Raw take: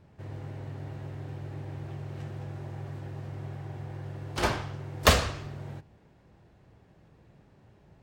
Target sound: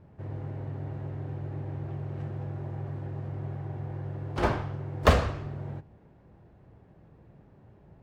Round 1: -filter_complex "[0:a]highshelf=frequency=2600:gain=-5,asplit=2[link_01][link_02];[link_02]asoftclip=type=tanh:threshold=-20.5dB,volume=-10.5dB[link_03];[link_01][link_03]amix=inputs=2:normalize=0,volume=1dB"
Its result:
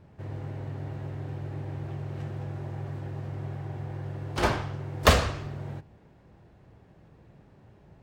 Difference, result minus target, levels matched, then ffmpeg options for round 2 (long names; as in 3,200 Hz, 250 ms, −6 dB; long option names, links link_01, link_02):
4,000 Hz band +6.0 dB
-filter_complex "[0:a]highshelf=frequency=2600:gain=-17,asplit=2[link_01][link_02];[link_02]asoftclip=type=tanh:threshold=-20.5dB,volume=-10.5dB[link_03];[link_01][link_03]amix=inputs=2:normalize=0,volume=1dB"